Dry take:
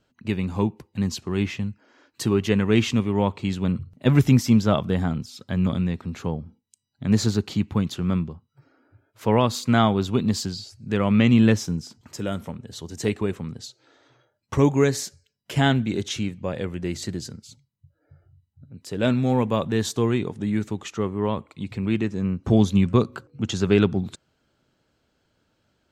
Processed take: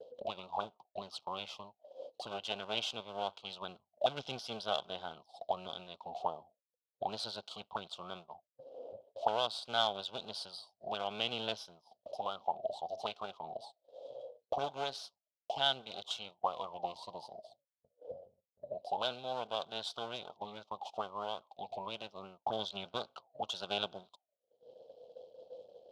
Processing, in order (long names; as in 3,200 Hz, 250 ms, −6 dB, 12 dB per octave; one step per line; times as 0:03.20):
Butterworth low-pass 5,200 Hz
half-wave rectification
drawn EQ curve 200 Hz 0 dB, 300 Hz −6 dB, 700 Hz +9 dB, 1,200 Hz −10 dB, 1,700 Hz −28 dB, 3,200 Hz +15 dB
upward compression, threshold −26 dBFS
envelope filter 450–1,500 Hz, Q 14, up, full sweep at −21 dBFS
downward expander −59 dBFS
level +13.5 dB